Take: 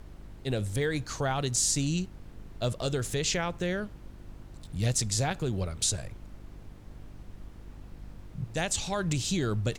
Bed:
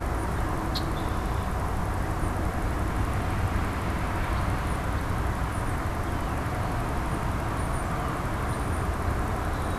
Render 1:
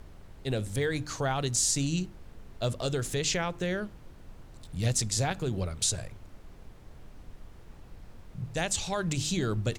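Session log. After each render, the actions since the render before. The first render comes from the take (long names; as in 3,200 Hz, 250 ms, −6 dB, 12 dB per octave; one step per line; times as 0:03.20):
hum removal 50 Hz, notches 7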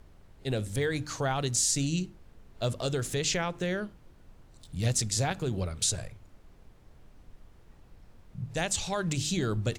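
noise reduction from a noise print 6 dB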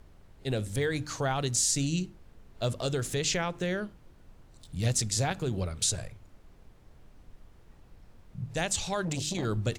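0:09.05–0:09.45: saturating transformer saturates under 480 Hz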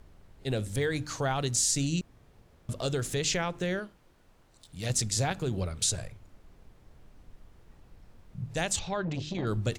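0:02.01–0:02.69: fill with room tone
0:03.79–0:04.90: low-shelf EQ 270 Hz −10 dB
0:08.79–0:09.47: high-frequency loss of the air 210 metres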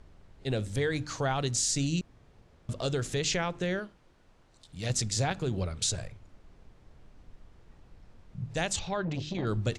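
low-pass filter 7,600 Hz 12 dB per octave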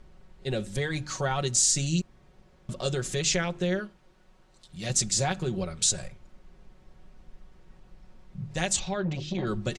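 comb filter 5.4 ms, depth 65%
dynamic equaliser 7,900 Hz, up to +6 dB, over −45 dBFS, Q 1.1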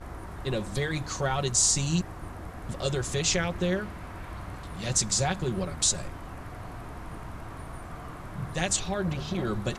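mix in bed −12 dB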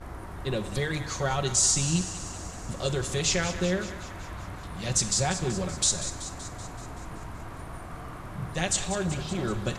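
feedback echo with a high-pass in the loop 190 ms, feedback 65%, high-pass 780 Hz, level −11.5 dB
four-comb reverb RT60 0.83 s, combs from 33 ms, DRR 12.5 dB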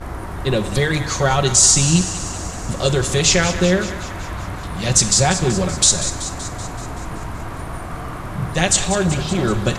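level +11 dB
brickwall limiter −1 dBFS, peak gain reduction 1 dB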